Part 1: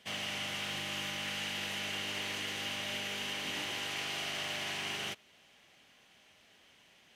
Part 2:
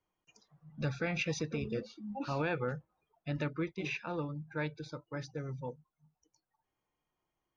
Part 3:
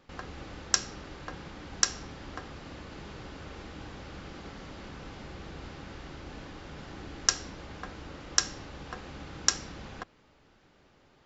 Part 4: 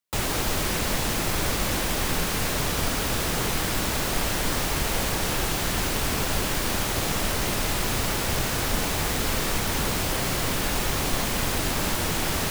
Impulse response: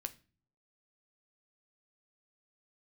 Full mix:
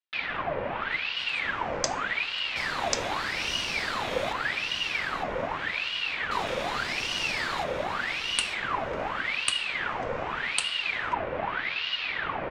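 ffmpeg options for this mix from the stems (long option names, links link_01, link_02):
-filter_complex "[0:a]highpass=frequency=1400:width_type=q:width=1.6,highshelf=frequency=7300:gain=-5.5,adelay=2500,volume=2dB,asplit=3[link_01][link_02][link_03];[link_01]atrim=end=4.33,asetpts=PTS-STARTPTS,afade=type=out:start_time=4.326:duration=0.004:curve=hsin[link_04];[link_02]atrim=start=4.33:end=6.31,asetpts=PTS-STARTPTS,volume=0[link_05];[link_03]atrim=start=6.31,asetpts=PTS-STARTPTS,afade=type=in:duration=0.004:curve=hsin[link_06];[link_04][link_05][link_06]concat=n=3:v=0:a=1,asplit=2[link_07][link_08];[link_08]volume=-7dB[link_09];[1:a]alimiter=level_in=6.5dB:limit=-24dB:level=0:latency=1,volume=-6.5dB,volume=-12.5dB[link_10];[2:a]adelay=1100,volume=-1.5dB[link_11];[3:a]lowpass=frequency=1900:width=0.5412,lowpass=frequency=1900:width=1.3066,volume=-2.5dB[link_12];[link_09]aecho=0:1:907|1814|2721|3628:1|0.28|0.0784|0.022[link_13];[link_07][link_10][link_11][link_12][link_13]amix=inputs=5:normalize=0,aecho=1:1:2.2:0.33,aeval=exprs='val(0)*sin(2*PI*1700*n/s+1700*0.7/0.84*sin(2*PI*0.84*n/s))':channel_layout=same"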